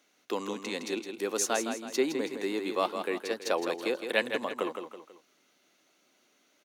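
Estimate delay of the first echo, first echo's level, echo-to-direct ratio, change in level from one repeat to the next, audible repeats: 163 ms, −7.5 dB, −6.5 dB, −7.5 dB, 3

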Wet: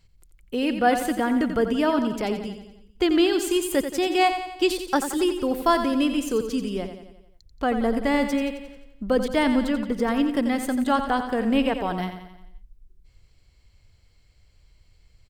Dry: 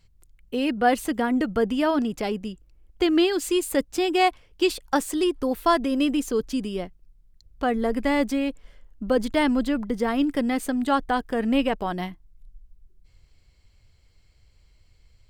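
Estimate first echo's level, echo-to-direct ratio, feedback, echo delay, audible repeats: −9.0 dB, −7.5 dB, 54%, 88 ms, 5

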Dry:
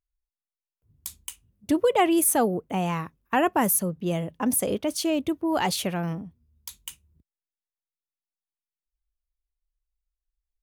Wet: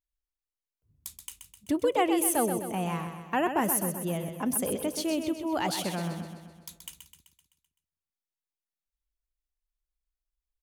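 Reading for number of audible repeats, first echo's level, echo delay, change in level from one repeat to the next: 6, −8.0 dB, 128 ms, −5.0 dB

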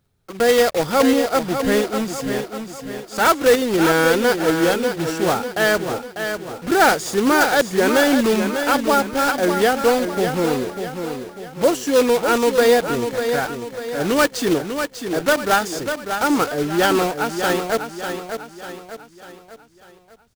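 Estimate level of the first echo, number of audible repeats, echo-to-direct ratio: −7.5 dB, 4, −6.5 dB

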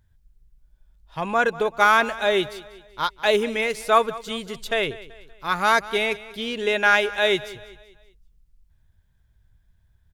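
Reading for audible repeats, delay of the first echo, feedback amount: 3, 191 ms, 44%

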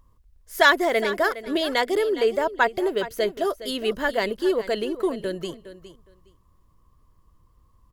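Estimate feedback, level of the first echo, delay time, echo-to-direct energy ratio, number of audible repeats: 17%, −14.0 dB, 412 ms, −14.0 dB, 2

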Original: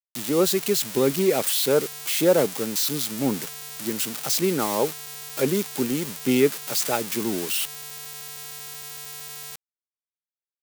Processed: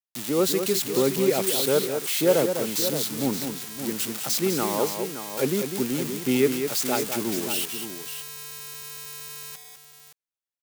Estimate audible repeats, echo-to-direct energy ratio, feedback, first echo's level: 2, −5.5 dB, repeats not evenly spaced, −7.5 dB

